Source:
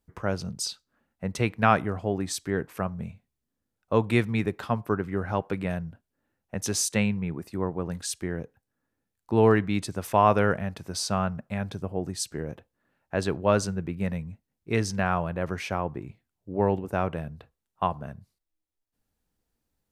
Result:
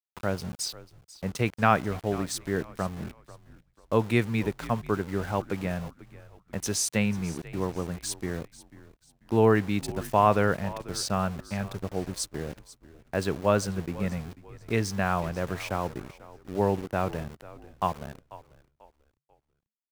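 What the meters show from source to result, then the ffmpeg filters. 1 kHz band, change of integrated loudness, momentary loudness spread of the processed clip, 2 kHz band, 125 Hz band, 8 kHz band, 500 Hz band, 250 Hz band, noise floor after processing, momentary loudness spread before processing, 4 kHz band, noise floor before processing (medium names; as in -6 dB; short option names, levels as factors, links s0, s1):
-1.0 dB, -1.0 dB, 16 LU, -1.0 dB, -1.0 dB, -1.0 dB, -1.0 dB, -1.0 dB, -76 dBFS, 14 LU, -1.0 dB, -84 dBFS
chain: -filter_complex "[0:a]aeval=exprs='val(0)*gte(abs(val(0)),0.0133)':c=same,asplit=4[s0][s1][s2][s3];[s1]adelay=491,afreqshift=-73,volume=0.126[s4];[s2]adelay=982,afreqshift=-146,volume=0.0417[s5];[s3]adelay=1473,afreqshift=-219,volume=0.0136[s6];[s0][s4][s5][s6]amix=inputs=4:normalize=0,volume=0.891"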